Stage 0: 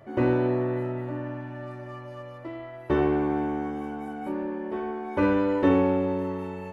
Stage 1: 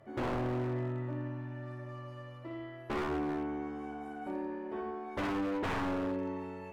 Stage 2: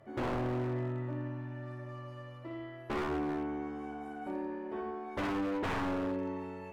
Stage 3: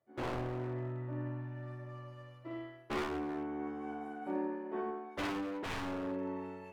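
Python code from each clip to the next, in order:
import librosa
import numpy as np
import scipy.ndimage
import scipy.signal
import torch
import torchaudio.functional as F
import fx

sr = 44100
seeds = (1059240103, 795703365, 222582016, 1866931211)

y1 = fx.env_lowpass_down(x, sr, base_hz=2800.0, full_db=-18.5)
y1 = fx.room_flutter(y1, sr, wall_m=9.8, rt60_s=0.63)
y1 = 10.0 ** (-21.0 / 20.0) * (np.abs((y1 / 10.0 ** (-21.0 / 20.0) + 3.0) % 4.0 - 2.0) - 1.0)
y1 = F.gain(torch.from_numpy(y1), -7.5).numpy()
y2 = y1
y3 = fx.hum_notches(y2, sr, base_hz=50, count=5)
y3 = fx.rider(y3, sr, range_db=4, speed_s=0.5)
y3 = fx.band_widen(y3, sr, depth_pct=100)
y3 = F.gain(torch.from_numpy(y3), -1.5).numpy()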